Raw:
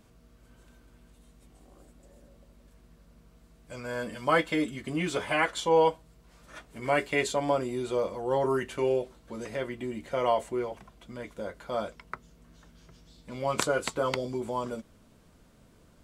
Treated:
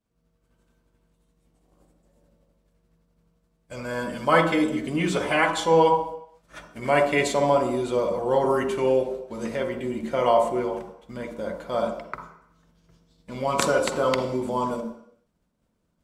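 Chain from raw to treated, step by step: expander -45 dBFS; on a send: reverb RT60 0.70 s, pre-delay 42 ms, DRR 5 dB; on the sum: gain +4 dB

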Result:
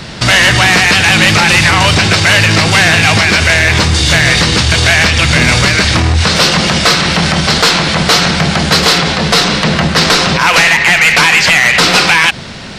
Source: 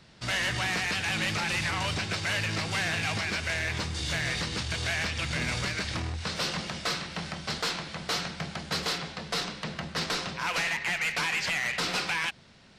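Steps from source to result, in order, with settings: maximiser +30.5 dB; gain -1 dB

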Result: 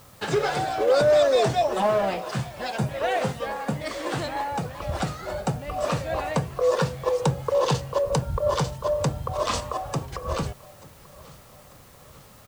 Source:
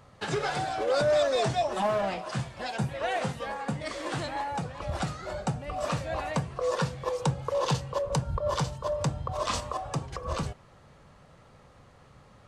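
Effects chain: dynamic EQ 450 Hz, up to +5 dB, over -39 dBFS, Q 1.6; in parallel at -7 dB: requantised 8-bit, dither triangular; on the sum: feedback echo 0.89 s, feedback 52%, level -22.5 dB

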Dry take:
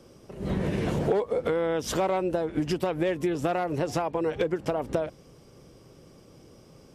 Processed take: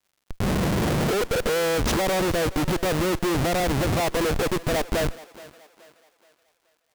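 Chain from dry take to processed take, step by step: Schmitt trigger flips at -31 dBFS; crackle 150/s -59 dBFS; thinning echo 0.425 s, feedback 43%, high-pass 310 Hz, level -18 dB; gain +6.5 dB

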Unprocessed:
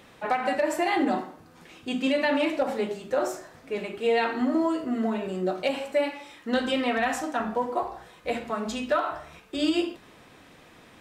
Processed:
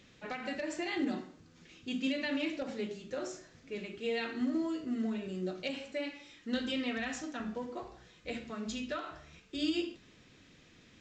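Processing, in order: bell 850 Hz -15 dB 1.7 oct; gain -4 dB; A-law 128 kbps 16000 Hz

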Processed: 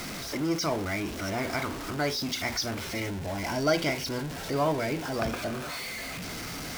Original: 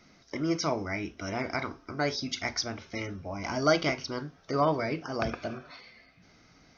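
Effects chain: zero-crossing step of -29.5 dBFS; 2.91–5.16 notch 1200 Hz, Q 6; gain -2 dB

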